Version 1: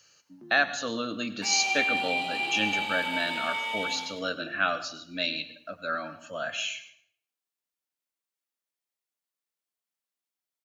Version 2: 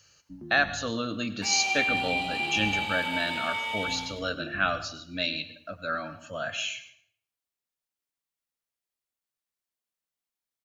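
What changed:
first sound: add spectral tilt −2.5 dB per octave
master: remove high-pass filter 190 Hz 12 dB per octave

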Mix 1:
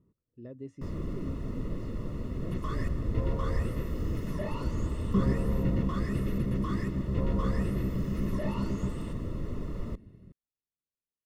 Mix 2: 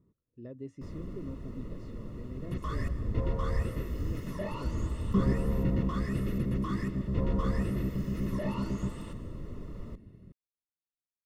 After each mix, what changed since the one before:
first sound −6.5 dB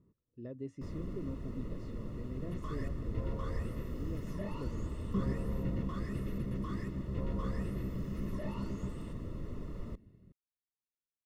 second sound −7.5 dB

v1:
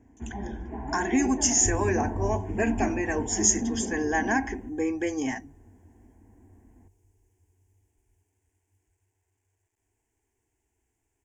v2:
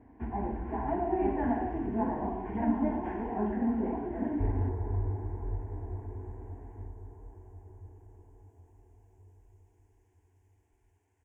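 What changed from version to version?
speech: muted
second sound: entry +2.75 s
master: add drawn EQ curve 220 Hz 0 dB, 1,100 Hz +7 dB, 8,100 Hz −7 dB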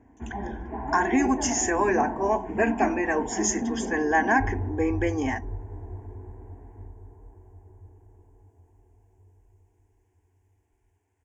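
speech: unmuted

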